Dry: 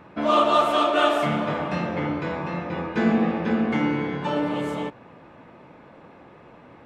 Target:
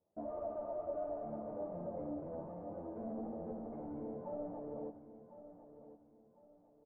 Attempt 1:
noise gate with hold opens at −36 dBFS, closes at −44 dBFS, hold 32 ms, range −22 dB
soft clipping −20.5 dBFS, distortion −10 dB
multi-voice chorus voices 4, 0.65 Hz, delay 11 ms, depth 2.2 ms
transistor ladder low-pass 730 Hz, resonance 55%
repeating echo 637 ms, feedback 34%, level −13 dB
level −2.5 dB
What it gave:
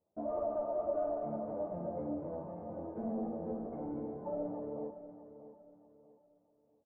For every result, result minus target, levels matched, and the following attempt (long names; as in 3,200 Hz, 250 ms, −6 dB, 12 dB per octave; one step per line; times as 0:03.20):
echo 415 ms early; soft clipping: distortion −5 dB
noise gate with hold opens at −36 dBFS, closes at −44 dBFS, hold 32 ms, range −22 dB
soft clipping −20.5 dBFS, distortion −10 dB
multi-voice chorus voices 4, 0.65 Hz, delay 11 ms, depth 2.2 ms
transistor ladder low-pass 730 Hz, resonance 55%
repeating echo 1,052 ms, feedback 34%, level −13 dB
level −2.5 dB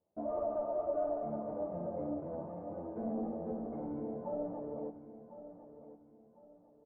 soft clipping: distortion −5 dB
noise gate with hold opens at −36 dBFS, closes at −44 dBFS, hold 32 ms, range −22 dB
soft clipping −28.5 dBFS, distortion −5 dB
multi-voice chorus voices 4, 0.65 Hz, delay 11 ms, depth 2.2 ms
transistor ladder low-pass 730 Hz, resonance 55%
repeating echo 1,052 ms, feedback 34%, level −13 dB
level −2.5 dB